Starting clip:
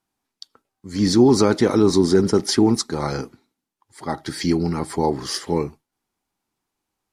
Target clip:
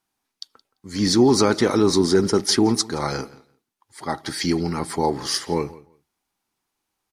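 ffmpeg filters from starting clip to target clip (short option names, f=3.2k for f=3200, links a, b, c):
-filter_complex "[0:a]tiltshelf=f=730:g=-3,bandreject=f=7.5k:w=20,asplit=2[a][b];[b]adelay=171,lowpass=f=4.3k:p=1,volume=-20dB,asplit=2[c][d];[d]adelay=171,lowpass=f=4.3k:p=1,volume=0.17[e];[a][c][e]amix=inputs=3:normalize=0"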